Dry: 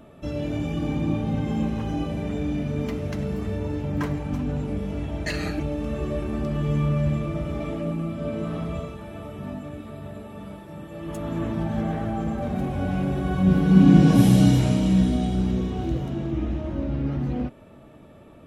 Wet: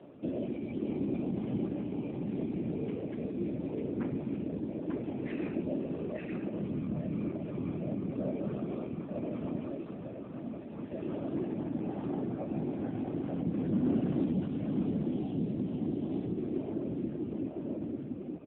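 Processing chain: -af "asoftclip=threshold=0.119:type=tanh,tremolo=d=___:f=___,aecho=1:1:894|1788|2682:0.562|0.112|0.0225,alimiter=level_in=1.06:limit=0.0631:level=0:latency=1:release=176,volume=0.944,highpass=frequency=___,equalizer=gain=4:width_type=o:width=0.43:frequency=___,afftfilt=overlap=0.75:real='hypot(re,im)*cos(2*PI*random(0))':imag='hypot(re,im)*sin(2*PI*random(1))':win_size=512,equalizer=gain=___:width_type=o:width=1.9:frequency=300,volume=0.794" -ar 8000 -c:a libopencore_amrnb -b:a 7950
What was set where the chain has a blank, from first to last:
0.54, 0.72, 120, 2500, 9.5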